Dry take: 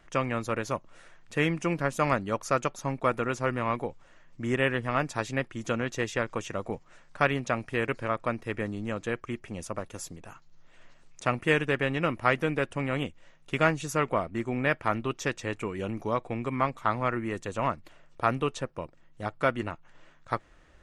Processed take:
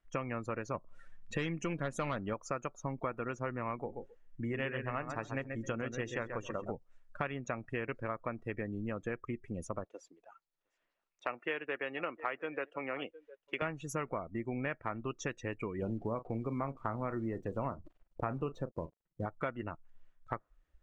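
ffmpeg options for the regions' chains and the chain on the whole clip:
-filter_complex "[0:a]asettb=1/sr,asplit=3[a][b][c];[a]atrim=end=0.744[d];[b]atrim=start=0.74:end=2.34,asetpts=PTS-STARTPTS,afade=t=in:d=0.004:c=qsin,afade=t=out:st=1.596:d=0.004:c=qsin,acontrast=70,aeval=exprs='(tanh(6.31*val(0)+0.35)-tanh(0.35))/6.31':c=same[e];[c]atrim=start=2.336[f];[d][e]acrossfade=d=0.004:c1=hsin:c2=qsin[g];[g][f]acrossfade=d=0.004:c1=qsin:c2=hsin,asettb=1/sr,asplit=3[h][i][j];[h]atrim=end=3.764[k];[i]atrim=start=3.76:end=6.72,asetpts=PTS-STARTPTS,afade=t=in:d=0.004:c=qsin,afade=t=out:st=2.956:d=0.004:c=qsin,bandreject=f=50:t=h:w=6,bandreject=f=100:t=h:w=6,bandreject=f=150:t=h:w=6,bandreject=f=200:t=h:w=6,bandreject=f=250:t=h:w=6,bandreject=f=300:t=h:w=6,bandreject=f=350:t=h:w=6,bandreject=f=400:t=h:w=6,aecho=1:1:132|264|396:0.398|0.0916|0.0211,atrim=end_sample=130536[l];[j]atrim=start=6.716[m];[k][l]acrossfade=d=0.004:c1=hsin:c2=qsin[n];[n][m]acrossfade=d=0.004:c1=qsin:c2=hsin,asettb=1/sr,asplit=3[o][p][q];[o]atrim=end=9.844[r];[p]atrim=start=9.84:end=13.62,asetpts=PTS-STARTPTS,afade=t=in:d=0.004:c=qsin,afade=t=out:st=3.776:d=0.004:c=qsin,acrossover=split=310 5800:gain=0.112 1 0.141[s][t][u];[s][t][u]amix=inputs=3:normalize=0,aecho=1:1:710:0.0944,atrim=end_sample=166698[v];[q]atrim=start=13.616[w];[r][v]acrossfade=d=0.004:c1=hsin:c2=qsin[x];[x][w]acrossfade=d=0.004:c1=qsin:c2=hsin,asettb=1/sr,asplit=3[y][z][aa];[y]atrim=end=15.824[ab];[z]atrim=start=15.82:end=19.26,asetpts=PTS-STARTPTS,afade=t=in:d=0.004:c=qsin,afade=t=out:st=3.436:d=0.004:c=qsin,tiltshelf=f=1.1k:g=5.5,acrusher=bits=6:mix=0:aa=0.5,asplit=2[ac][ad];[ad]adelay=36,volume=-13dB[ae];[ac][ae]amix=inputs=2:normalize=0,atrim=end_sample=151704[af];[aa]atrim=start=19.256[ag];[ab][af]acrossfade=d=0.004:c1=hsin:c2=qsin[ah];[ah][ag]acrossfade=d=0.004:c1=qsin:c2=hsin,afftdn=nr=23:nf=-38,acompressor=threshold=-35dB:ratio=4"

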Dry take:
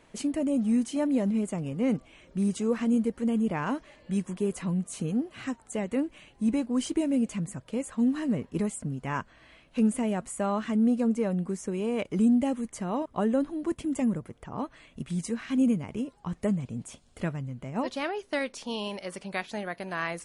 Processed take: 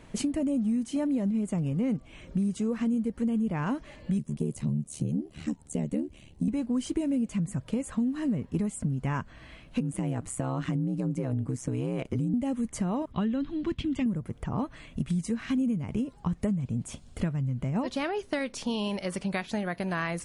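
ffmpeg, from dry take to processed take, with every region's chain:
-filter_complex "[0:a]asettb=1/sr,asplit=3[a][b][c];[a]atrim=end=4.184[d];[b]atrim=start=4.18:end=6.48,asetpts=PTS-STARTPTS,afade=t=in:d=0.004:c=qsin,afade=t=out:st=2.296:d=0.004:c=qsin,equalizer=f=1.4k:t=o:w=2:g=-12,aeval=exprs='val(0)*sin(2*PI*37*n/s)':c=same[e];[c]atrim=start=6.476[f];[d][e]acrossfade=d=0.004:c1=hsin:c2=qsin[g];[g][f]acrossfade=d=0.004:c1=qsin:c2=hsin,asettb=1/sr,asplit=3[h][i][j];[h]atrim=end=9.804[k];[i]atrim=start=9.8:end=12.34,asetpts=PTS-STARTPTS,afade=t=in:d=0.004:c=qsin,afade=t=out:st=2.536:d=0.004:c=qsin,acompressor=threshold=-29dB:ratio=2.5:attack=3.2:release=140:knee=1:detection=peak,aeval=exprs='val(0)*sin(2*PI*64*n/s)':c=same[l];[j]atrim=start=12.336[m];[k][l]acrossfade=d=0.004:c1=hsin:c2=qsin[n];[n][m]acrossfade=d=0.004:c1=qsin:c2=hsin,asettb=1/sr,asplit=3[o][p][q];[o]atrim=end=13.124[r];[p]atrim=start=13.12:end=14.06,asetpts=PTS-STARTPTS,afade=t=in:d=0.004:c=qsin,afade=t=out:st=0.936:d=0.004:c=qsin,lowpass=f=3.6k:t=q:w=2.2,equalizer=f=600:w=0.76:g=-9.5[s];[q]atrim=start=14.056[t];[r][s]acrossfade=d=0.004:c1=hsin:c2=qsin[u];[u][t]acrossfade=d=0.004:c1=qsin:c2=hsin,bass=f=250:g=9,treble=f=4k:g=0,acompressor=threshold=-30dB:ratio=6,volume=4dB"

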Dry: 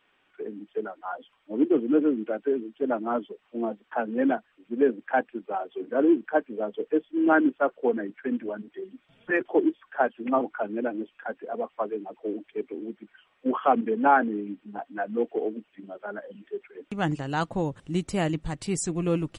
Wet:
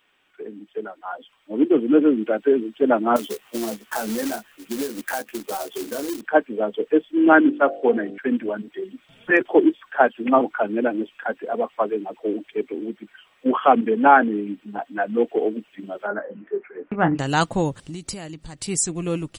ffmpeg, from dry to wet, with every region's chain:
-filter_complex "[0:a]asettb=1/sr,asplit=3[a][b][c];[a]atrim=end=3.164[d];[b]atrim=start=3.16:end=6.21,asetpts=PTS-STARTPTS,afade=t=in:d=0.004:c=qsin,afade=t=out:st=3.046:d=0.004:c=qsin,asplit=2[e][f];[f]adelay=14,volume=-3dB[g];[e][g]amix=inputs=2:normalize=0,atrim=end_sample=134505,acrusher=bits=3:mode=log:mix=0:aa=0.000001,acompressor=threshold=-32dB:ratio=10:attack=3.2:release=140:knee=1:detection=peak[h];[c]atrim=start=6.206[i];[d][h]acrossfade=d=0.004:c1=hsin:c2=qsin[j];[j][i]acrossfade=d=0.004:c1=qsin:c2=hsin,asettb=1/sr,asplit=3[k][l][m];[k]atrim=end=7.424[n];[l]atrim=start=7.42:end=8.18,asetpts=PTS-STARTPTS,afade=t=in:d=0.004:c=qsin,afade=t=out:st=0.756:d=0.004:c=qsin,lowpass=6.8k,bandreject=f=49.29:t=h:w=4,bandreject=f=98.58:t=h:w=4,bandreject=f=147.87:t=h:w=4,bandreject=f=197.16:t=h:w=4,bandreject=f=246.45:t=h:w=4,bandreject=f=295.74:t=h:w=4,bandreject=f=345.03:t=h:w=4,bandreject=f=394.32:t=h:w=4,bandreject=f=443.61:t=h:w=4,bandreject=f=492.9:t=h:w=4,bandreject=f=542.19:t=h:w=4,bandreject=f=591.48:t=h:w=4,bandreject=f=640.77:t=h:w=4,bandreject=f=690.06:t=h:w=4,bandreject=f=739.35:t=h:w=4,bandreject=f=788.64:t=h:w=4[o];[m]atrim=start=8.176[p];[n][o]acrossfade=d=0.004:c1=hsin:c2=qsin[q];[q][p]acrossfade=d=0.004:c1=qsin:c2=hsin,asettb=1/sr,asplit=3[r][s][t];[r]atrim=end=16.074[u];[s]atrim=start=16.07:end=17.19,asetpts=PTS-STARTPTS,afade=t=in:d=0.004:c=qsin,afade=t=out:st=1.116:d=0.004:c=qsin,lowpass=f=1.8k:w=0.5412,lowpass=f=1.8k:w=1.3066,lowshelf=f=140:g=-6.5,asplit=2[v][w];[w]adelay=23,volume=-8dB[x];[v][x]amix=inputs=2:normalize=0,atrim=end_sample=49392[y];[t]atrim=start=17.186[z];[u][y]acrossfade=d=0.004:c1=hsin:c2=qsin[aa];[aa][z]acrossfade=d=0.004:c1=qsin:c2=hsin,asettb=1/sr,asplit=3[ab][ac][ad];[ab]atrim=end=17.754[ae];[ac]atrim=start=17.75:end=18.59,asetpts=PTS-STARTPTS,afade=t=in:d=0.004:c=qsin,afade=t=out:st=0.836:d=0.004:c=qsin,equalizer=f=4.6k:t=o:w=0.26:g=7.5,acompressor=threshold=-34dB:ratio=6:attack=3.2:release=140:knee=1:detection=peak[af];[ad]atrim=start=18.586[ag];[ae][af]acrossfade=d=0.004:c1=hsin:c2=qsin[ah];[ah][ag]acrossfade=d=0.004:c1=qsin:c2=hsin,highshelf=f=3.9k:g=11.5,dynaudnorm=f=120:g=31:m=11.5dB"

